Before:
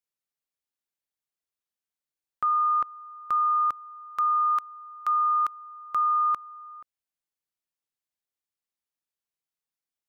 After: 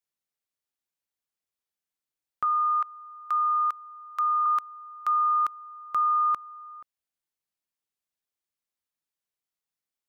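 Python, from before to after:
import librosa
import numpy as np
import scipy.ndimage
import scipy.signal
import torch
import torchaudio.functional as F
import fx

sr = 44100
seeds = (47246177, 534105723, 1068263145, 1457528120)

y = fx.highpass(x, sr, hz=880.0, slope=12, at=(2.44, 4.46))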